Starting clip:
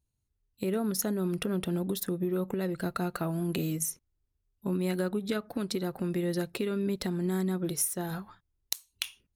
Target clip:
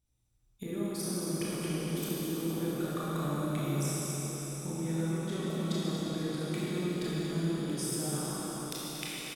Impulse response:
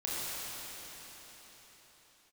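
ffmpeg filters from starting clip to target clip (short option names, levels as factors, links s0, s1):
-filter_complex "[0:a]bandreject=f=50:t=h:w=6,bandreject=f=100:t=h:w=6,acompressor=threshold=0.0112:ratio=6,asetrate=39289,aresample=44100,atempo=1.12246,asplit=9[s0][s1][s2][s3][s4][s5][s6][s7][s8];[s1]adelay=232,afreqshift=42,volume=0.266[s9];[s2]adelay=464,afreqshift=84,volume=0.17[s10];[s3]adelay=696,afreqshift=126,volume=0.108[s11];[s4]adelay=928,afreqshift=168,volume=0.07[s12];[s5]adelay=1160,afreqshift=210,volume=0.0447[s13];[s6]adelay=1392,afreqshift=252,volume=0.0285[s14];[s7]adelay=1624,afreqshift=294,volume=0.0182[s15];[s8]adelay=1856,afreqshift=336,volume=0.0117[s16];[s0][s9][s10][s11][s12][s13][s14][s15][s16]amix=inputs=9:normalize=0[s17];[1:a]atrim=start_sample=2205[s18];[s17][s18]afir=irnorm=-1:irlink=0,volume=1.26"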